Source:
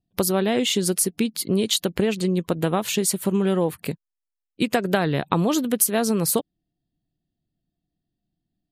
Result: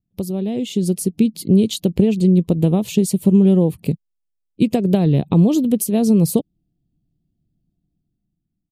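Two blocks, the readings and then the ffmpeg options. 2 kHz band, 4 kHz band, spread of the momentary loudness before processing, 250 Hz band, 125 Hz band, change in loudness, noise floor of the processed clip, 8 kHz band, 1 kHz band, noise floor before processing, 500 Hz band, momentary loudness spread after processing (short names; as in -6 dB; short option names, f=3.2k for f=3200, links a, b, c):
n/a, -5.5 dB, 6 LU, +8.5 dB, +10.0 dB, +5.0 dB, -75 dBFS, -5.0 dB, -5.0 dB, -85 dBFS, +2.5 dB, 9 LU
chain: -af "firequalizer=gain_entry='entry(190,0);entry(270,-4);entry(1500,-29);entry(2500,-15)':delay=0.05:min_phase=1,dynaudnorm=f=100:g=17:m=9.5dB,volume=2dB"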